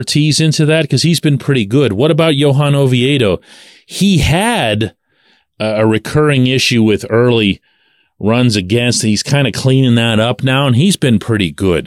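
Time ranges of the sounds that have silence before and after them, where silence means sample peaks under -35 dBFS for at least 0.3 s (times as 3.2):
5.6–7.57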